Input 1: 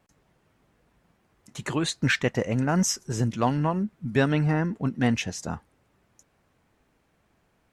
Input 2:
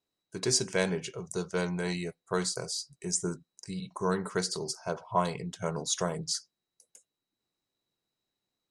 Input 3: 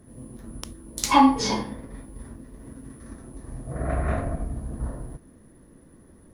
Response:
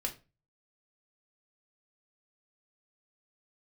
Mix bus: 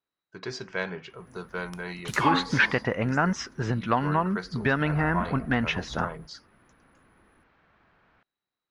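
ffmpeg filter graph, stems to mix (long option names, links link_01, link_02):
-filter_complex "[0:a]adelay=500,volume=0.5dB[link_01];[1:a]volume=-6.5dB[link_02];[2:a]adelay=1100,volume=-13.5dB[link_03];[link_01][link_02]amix=inputs=2:normalize=0,lowpass=frequency=4500:width=0.5412,lowpass=frequency=4500:width=1.3066,acompressor=threshold=-23dB:ratio=6,volume=0dB[link_04];[link_03][link_04]amix=inputs=2:normalize=0,equalizer=frequency=1400:width=0.93:gain=10"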